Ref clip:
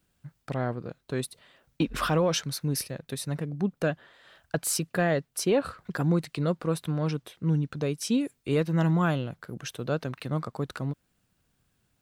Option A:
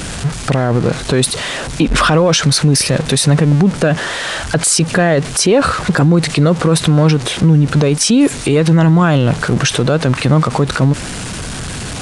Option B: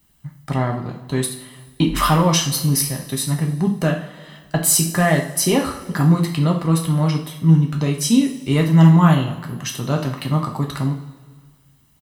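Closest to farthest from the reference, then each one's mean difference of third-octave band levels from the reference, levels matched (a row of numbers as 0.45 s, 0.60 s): B, A; 6.0 dB, 7.5 dB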